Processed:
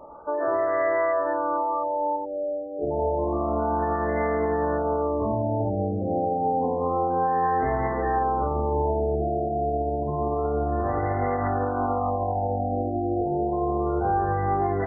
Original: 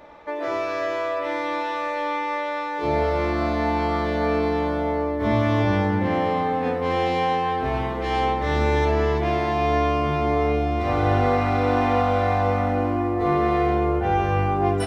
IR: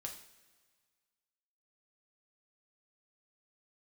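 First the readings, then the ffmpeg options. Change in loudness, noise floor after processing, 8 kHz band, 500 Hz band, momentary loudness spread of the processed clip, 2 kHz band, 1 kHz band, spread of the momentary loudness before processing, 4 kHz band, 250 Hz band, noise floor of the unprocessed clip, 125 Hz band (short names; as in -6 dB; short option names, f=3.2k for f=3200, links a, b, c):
-2.5 dB, -29 dBFS, n/a, -1.5 dB, 3 LU, -8.0 dB, -2.0 dB, 5 LU, under -40 dB, -4.5 dB, -27 dBFS, -5.0 dB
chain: -filter_complex "[0:a]alimiter=limit=-17.5dB:level=0:latency=1:release=123,aexciter=amount=12.7:drive=5.4:freq=2.5k,asplit=2[a][b];[b]highpass=310,lowpass=6k[c];[1:a]atrim=start_sample=2205,lowpass=f=3.2k:w=0.5412,lowpass=f=3.2k:w=1.3066[d];[c][d]afir=irnorm=-1:irlink=0,volume=-4dB[e];[a][e]amix=inputs=2:normalize=0,afftfilt=real='re*lt(b*sr/1024,790*pow(2100/790,0.5+0.5*sin(2*PI*0.29*pts/sr)))':imag='im*lt(b*sr/1024,790*pow(2100/790,0.5+0.5*sin(2*PI*0.29*pts/sr)))':win_size=1024:overlap=0.75"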